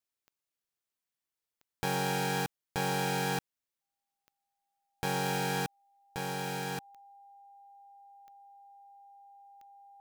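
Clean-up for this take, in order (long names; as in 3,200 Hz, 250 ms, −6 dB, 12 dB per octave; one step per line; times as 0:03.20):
click removal
notch filter 800 Hz, Q 30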